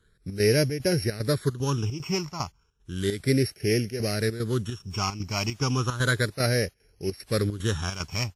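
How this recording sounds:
a buzz of ramps at a fixed pitch in blocks of 8 samples
phaser sweep stages 8, 0.33 Hz, lowest notch 490–1,100 Hz
chopped level 2.5 Hz, depth 65%, duty 75%
WMA

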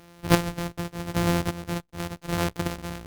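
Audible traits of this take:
a buzz of ramps at a fixed pitch in blocks of 256 samples
chopped level 0.86 Hz, depth 60%, duty 30%
Opus

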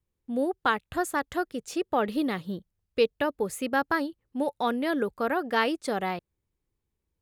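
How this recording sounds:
background noise floor −83 dBFS
spectral slope −3.0 dB per octave

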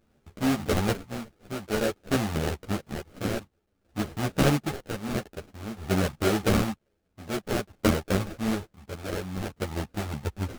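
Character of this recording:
a quantiser's noise floor 12 bits, dither triangular
chopped level 0.52 Hz, depth 60%, duty 50%
aliases and images of a low sample rate 1,000 Hz, jitter 20%
a shimmering, thickened sound

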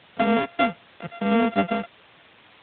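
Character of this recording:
a buzz of ramps at a fixed pitch in blocks of 64 samples
tremolo saw down 3.8 Hz, depth 35%
a quantiser's noise floor 8 bits, dither triangular
AMR narrowband

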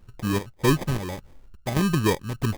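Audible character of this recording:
chopped level 1.7 Hz, depth 60%, duty 65%
phaser sweep stages 4, 2 Hz, lowest notch 680–1,700 Hz
aliases and images of a low sample rate 1,400 Hz, jitter 0%

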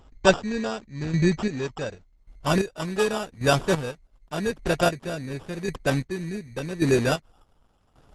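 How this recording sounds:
chopped level 0.88 Hz, depth 65%, duty 30%
aliases and images of a low sample rate 2,100 Hz, jitter 0%
Opus

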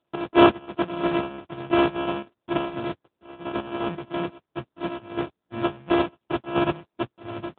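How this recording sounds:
a buzz of ramps at a fixed pitch in blocks of 128 samples
chopped level 2.9 Hz, depth 65%, duty 45%
aliases and images of a low sample rate 2,000 Hz, jitter 0%
AMR narrowband

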